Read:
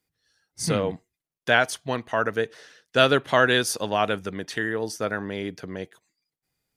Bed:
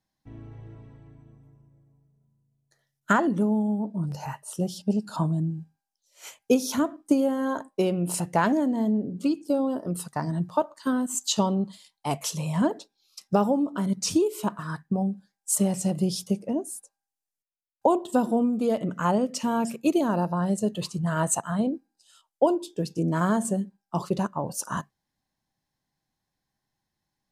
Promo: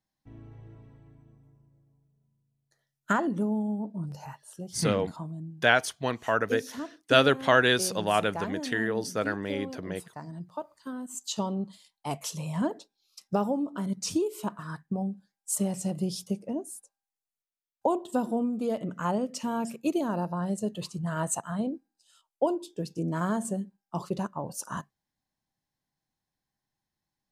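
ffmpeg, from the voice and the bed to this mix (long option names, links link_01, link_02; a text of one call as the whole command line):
ffmpeg -i stem1.wav -i stem2.wav -filter_complex "[0:a]adelay=4150,volume=-2dB[link_01];[1:a]volume=3dB,afade=type=out:start_time=3.86:duration=0.77:silence=0.398107,afade=type=in:start_time=10.92:duration=0.78:silence=0.421697[link_02];[link_01][link_02]amix=inputs=2:normalize=0" out.wav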